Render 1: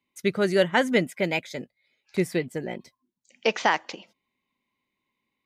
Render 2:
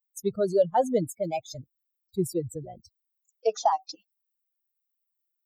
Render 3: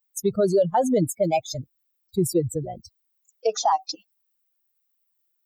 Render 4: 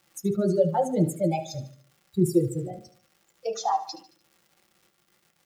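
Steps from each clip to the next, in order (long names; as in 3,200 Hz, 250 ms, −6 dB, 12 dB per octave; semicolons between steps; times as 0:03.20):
spectral dynamics exaggerated over time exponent 3; drawn EQ curve 200 Hz 0 dB, 290 Hz −3 dB, 430 Hz +5 dB, 760 Hz +11 dB, 1,900 Hz −22 dB, 4,300 Hz −6 dB; envelope flattener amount 50%; level −5.5 dB
brickwall limiter −21 dBFS, peak gain reduction 9 dB; level +8.5 dB
surface crackle 320 per second −42 dBFS; repeating echo 74 ms, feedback 47%, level −14 dB; on a send at −2 dB: convolution reverb RT60 0.15 s, pre-delay 3 ms; on the sum: level −7.5 dB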